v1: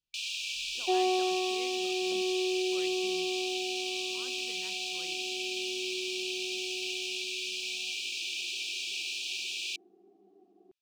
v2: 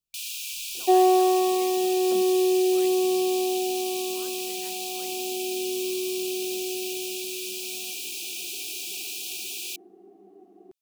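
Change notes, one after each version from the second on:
first sound -5.5 dB; second sound +9.5 dB; master: remove distance through air 140 m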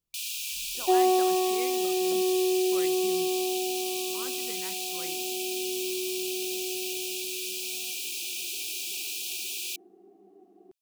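speech +5.0 dB; second sound -4.0 dB; reverb: on, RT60 2.2 s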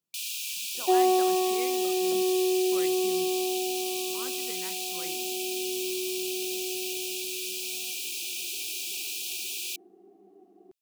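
speech: add high-pass 140 Hz 24 dB/octave

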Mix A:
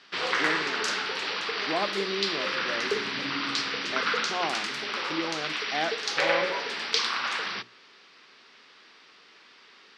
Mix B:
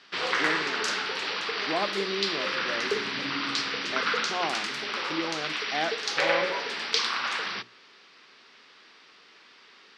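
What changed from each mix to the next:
no change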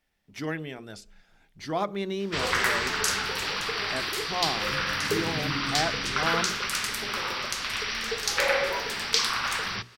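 background: entry +2.20 s; master: remove Chebyshev band-pass 280–4200 Hz, order 2

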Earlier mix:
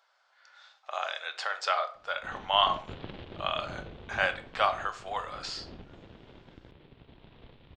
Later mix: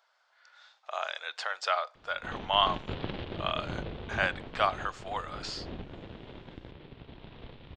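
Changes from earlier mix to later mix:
background +6.0 dB; reverb: off

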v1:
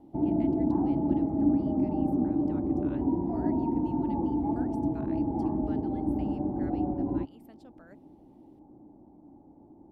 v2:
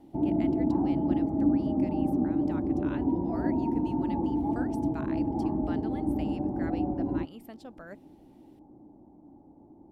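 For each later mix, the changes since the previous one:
speech +9.5 dB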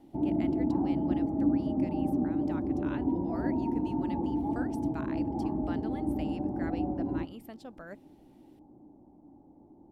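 background -3.0 dB; reverb: on, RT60 0.55 s

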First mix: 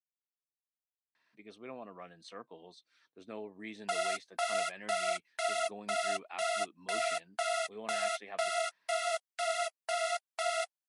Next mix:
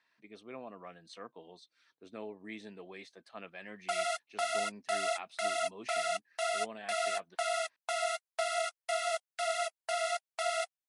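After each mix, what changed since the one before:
speech: entry -1.15 s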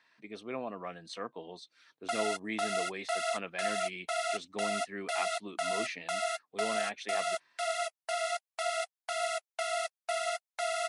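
speech +7.5 dB; background: entry -1.80 s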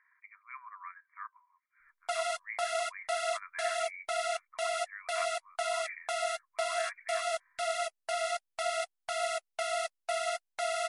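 speech: add brick-wall FIR band-pass 950–2400 Hz; master: remove high-pass 410 Hz 12 dB/octave

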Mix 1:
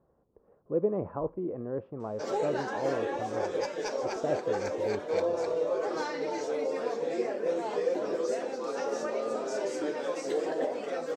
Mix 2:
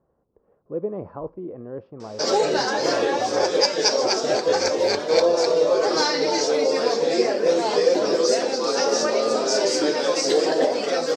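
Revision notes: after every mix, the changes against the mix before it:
background +10.5 dB; master: add peaking EQ 4.9 kHz +15 dB 0.83 oct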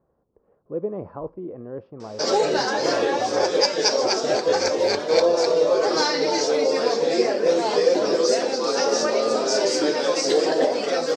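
background: add treble shelf 9.9 kHz -4 dB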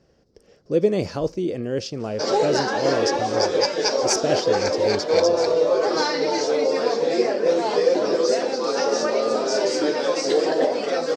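speech: remove four-pole ladder low-pass 1.2 kHz, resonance 55%; master: add treble shelf 4.6 kHz -6 dB

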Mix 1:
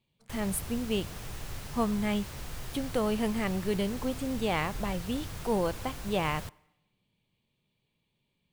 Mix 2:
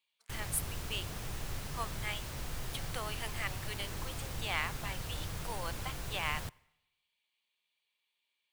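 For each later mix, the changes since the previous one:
speech: add high-pass 1.3 kHz 12 dB/octave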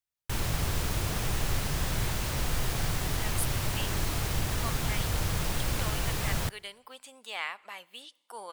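speech: entry +2.85 s; background +10.5 dB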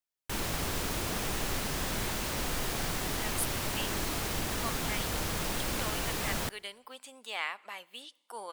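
master: add resonant low shelf 170 Hz -7 dB, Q 1.5

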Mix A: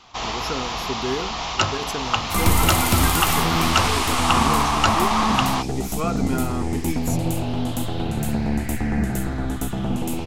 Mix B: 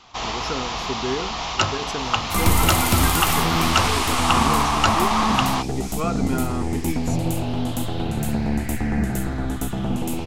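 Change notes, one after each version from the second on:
speech: add low-pass 6.7 kHz 12 dB/octave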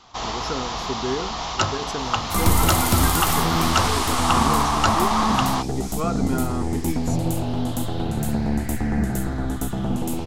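master: add peaking EQ 2.5 kHz -6 dB 0.65 oct

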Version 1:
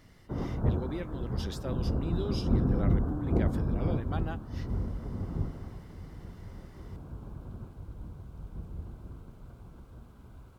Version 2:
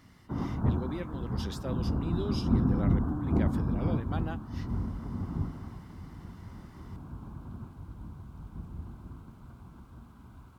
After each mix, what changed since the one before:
background: add ten-band graphic EQ 250 Hz +5 dB, 500 Hz -9 dB, 1 kHz +6 dB; master: add high-pass 46 Hz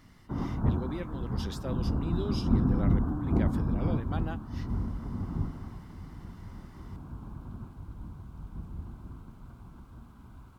master: remove high-pass 46 Hz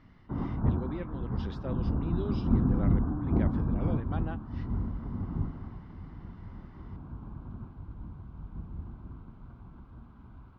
master: add distance through air 290 m

